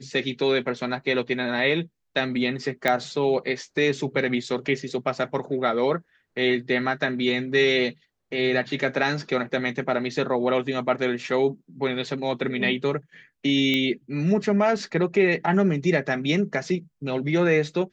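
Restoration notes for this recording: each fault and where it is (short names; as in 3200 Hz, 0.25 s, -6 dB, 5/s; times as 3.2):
2.88 pop -8 dBFS
13.74 pop -12 dBFS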